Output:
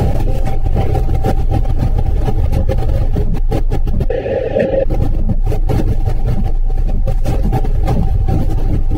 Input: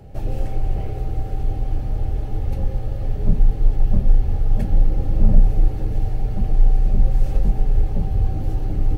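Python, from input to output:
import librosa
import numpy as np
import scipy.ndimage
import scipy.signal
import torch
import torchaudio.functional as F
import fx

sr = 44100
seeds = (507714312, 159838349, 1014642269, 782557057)

y = fx.highpass(x, sr, hz=42.0, slope=6, at=(7.33, 8.04))
y = fx.dereverb_blind(y, sr, rt60_s=0.65)
y = fx.vowel_filter(y, sr, vowel='e', at=(4.07, 4.84), fade=0.02)
y = fx.env_flatten(y, sr, amount_pct=100)
y = F.gain(torch.from_numpy(y), -6.5).numpy()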